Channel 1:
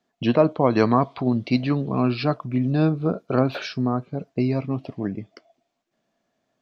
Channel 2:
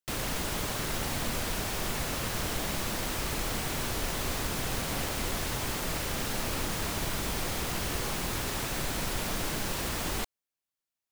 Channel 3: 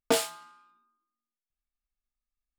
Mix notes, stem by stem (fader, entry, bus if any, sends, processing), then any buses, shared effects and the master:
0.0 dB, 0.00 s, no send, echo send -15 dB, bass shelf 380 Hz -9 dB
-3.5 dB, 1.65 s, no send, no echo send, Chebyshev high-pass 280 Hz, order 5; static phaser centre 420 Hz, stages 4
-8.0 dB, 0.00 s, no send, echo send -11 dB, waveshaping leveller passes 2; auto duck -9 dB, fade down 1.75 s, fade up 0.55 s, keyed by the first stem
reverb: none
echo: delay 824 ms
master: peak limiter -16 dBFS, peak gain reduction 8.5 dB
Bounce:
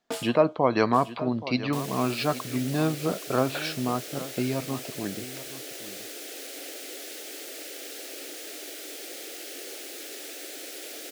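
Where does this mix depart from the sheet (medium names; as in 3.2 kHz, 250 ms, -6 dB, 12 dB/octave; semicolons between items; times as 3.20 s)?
stem 3: missing waveshaping leveller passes 2; master: missing peak limiter -16 dBFS, peak gain reduction 8.5 dB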